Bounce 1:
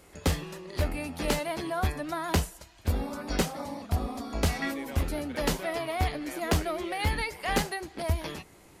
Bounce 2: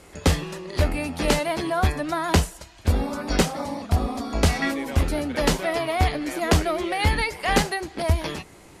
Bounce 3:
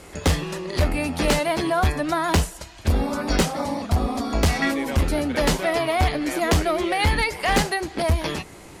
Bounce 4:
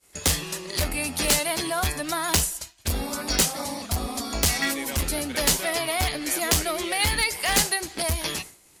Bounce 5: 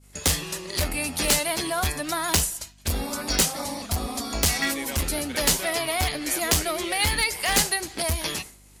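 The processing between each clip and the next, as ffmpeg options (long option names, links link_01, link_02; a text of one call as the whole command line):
ffmpeg -i in.wav -af "lowpass=11000,volume=7dB" out.wav
ffmpeg -i in.wav -filter_complex "[0:a]asplit=2[link_01][link_02];[link_02]acompressor=threshold=-29dB:ratio=4,volume=-2dB[link_03];[link_01][link_03]amix=inputs=2:normalize=0,asoftclip=type=hard:threshold=-13.5dB" out.wav
ffmpeg -i in.wav -af "agate=range=-33dB:threshold=-33dB:ratio=3:detection=peak,crystalizer=i=5.5:c=0,volume=-7.5dB" out.wav
ffmpeg -i in.wav -af "aeval=exprs='val(0)+0.00224*(sin(2*PI*50*n/s)+sin(2*PI*2*50*n/s)/2+sin(2*PI*3*50*n/s)/3+sin(2*PI*4*50*n/s)/4+sin(2*PI*5*50*n/s)/5)':channel_layout=same" out.wav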